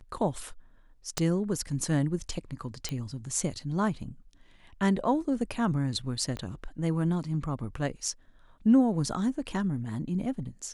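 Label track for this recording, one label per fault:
1.180000	1.180000	pop -13 dBFS
2.890000	2.890000	pop -18 dBFS
6.370000	6.370000	pop -24 dBFS

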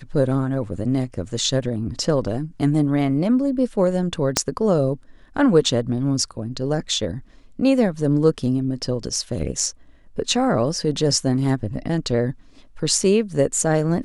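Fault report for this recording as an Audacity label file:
4.370000	4.370000	pop -2 dBFS

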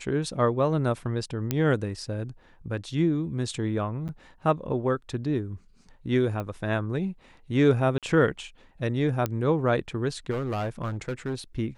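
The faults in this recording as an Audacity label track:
1.510000	1.510000	pop -11 dBFS
4.080000	4.090000	gap 8.7 ms
6.400000	6.400000	pop -20 dBFS
7.980000	8.030000	gap 47 ms
9.260000	9.260000	pop -13 dBFS
10.300000	11.350000	clipped -25.5 dBFS

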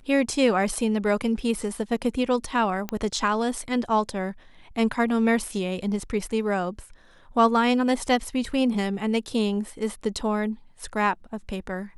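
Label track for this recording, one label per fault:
2.890000	2.890000	pop -14 dBFS

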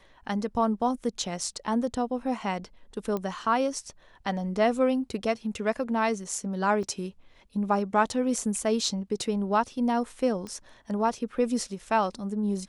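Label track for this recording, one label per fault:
3.170000	3.170000	pop -19 dBFS
6.830000	6.830000	gap 3.7 ms
10.470000	10.470000	pop -25 dBFS

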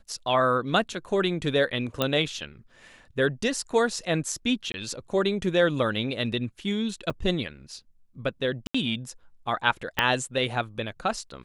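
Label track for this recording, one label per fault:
2.020000	2.020000	pop -10 dBFS
4.720000	4.740000	gap 21 ms
7.100000	7.100000	gap 4.5 ms
8.670000	8.740000	gap 75 ms
9.990000	9.990000	pop -8 dBFS

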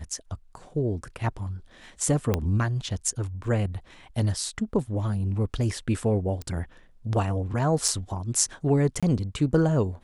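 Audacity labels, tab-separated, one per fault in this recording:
2.340000	2.340000	pop -10 dBFS
3.440000	3.440000	gap 2.1 ms
6.420000	6.420000	pop -22 dBFS
7.880000	7.880000	gap 4.6 ms
9.000000	9.030000	gap 26 ms

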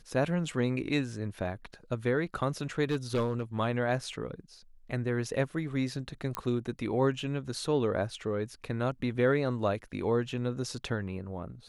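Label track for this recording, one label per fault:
2.900000	3.430000	clipped -24 dBFS
6.350000	6.350000	pop -16 dBFS

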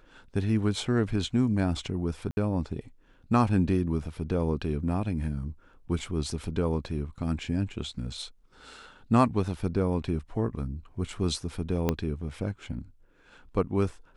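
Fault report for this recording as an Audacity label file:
2.310000	2.370000	gap 61 ms
11.890000	11.890000	pop -12 dBFS

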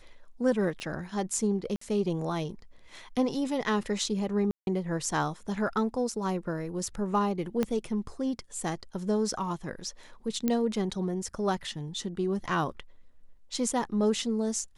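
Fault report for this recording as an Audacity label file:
0.800000	0.800000	pop -25 dBFS
1.760000	1.810000	gap 54 ms
4.510000	4.670000	gap 0.161 s
7.630000	7.630000	pop -15 dBFS
10.480000	10.480000	pop -14 dBFS

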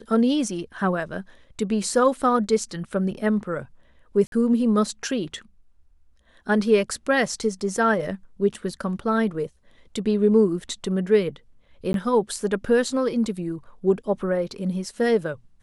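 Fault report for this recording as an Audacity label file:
4.270000	4.320000	gap 52 ms
11.930000	11.940000	gap 12 ms

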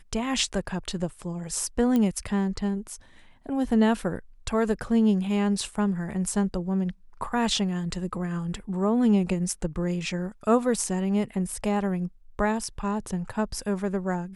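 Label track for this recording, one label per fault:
1.960000	1.960000	pop -14 dBFS

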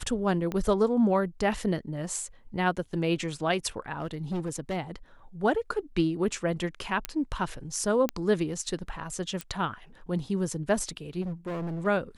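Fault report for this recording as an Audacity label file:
0.520000	0.520000	pop -19 dBFS
4.000000	4.780000	clipped -27 dBFS
7.050000	7.050000	pop -12 dBFS
8.090000	8.090000	pop -13 dBFS
9.410000	9.410000	pop -17 dBFS
11.210000	11.870000	clipped -30.5 dBFS

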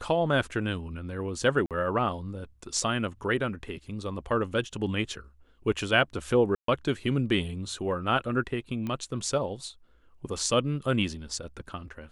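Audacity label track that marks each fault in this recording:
1.660000	1.710000	gap 47 ms
6.550000	6.680000	gap 0.133 s
8.870000	8.870000	pop -22 dBFS

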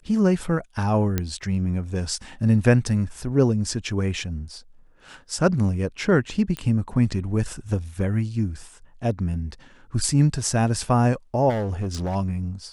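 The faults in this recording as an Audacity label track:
1.180000	1.180000	pop -9 dBFS
6.570000	6.570000	pop -15 dBFS
11.490000	12.160000	clipped -22 dBFS

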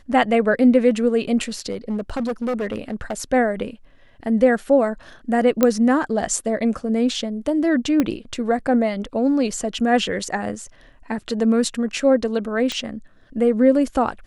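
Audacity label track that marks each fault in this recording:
1.700000	3.140000	clipped -20 dBFS
5.630000	5.630000	pop -3 dBFS
8.000000	8.000000	pop -7 dBFS
12.720000	12.720000	pop -11 dBFS

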